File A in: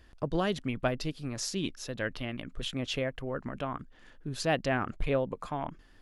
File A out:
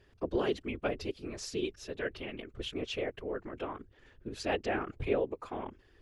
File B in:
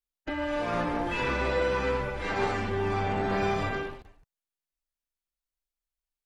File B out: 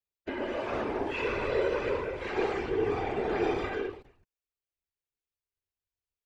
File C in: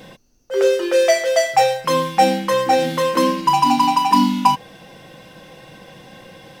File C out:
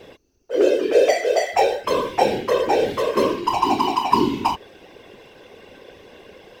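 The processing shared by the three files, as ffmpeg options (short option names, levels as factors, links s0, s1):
-af "afftfilt=real='hypot(re,im)*cos(2*PI*random(0))':imag='hypot(re,im)*sin(2*PI*random(1))':win_size=512:overlap=0.75,equalizer=f=160:t=o:w=0.67:g=-7,equalizer=f=400:t=o:w=0.67:g=10,equalizer=f=2500:t=o:w=0.67:g=4,equalizer=f=10000:t=o:w=0.67:g=-5"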